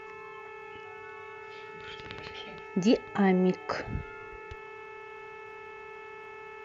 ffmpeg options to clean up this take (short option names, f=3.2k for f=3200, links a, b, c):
-af "adeclick=t=4,bandreject=f=436.5:t=h:w=4,bandreject=f=873:t=h:w=4,bandreject=f=1.3095k:t=h:w=4,bandreject=f=1.746k:t=h:w=4,bandreject=f=2.1825k:t=h:w=4,bandreject=f=2.619k:t=h:w=4,bandreject=f=400:w=30"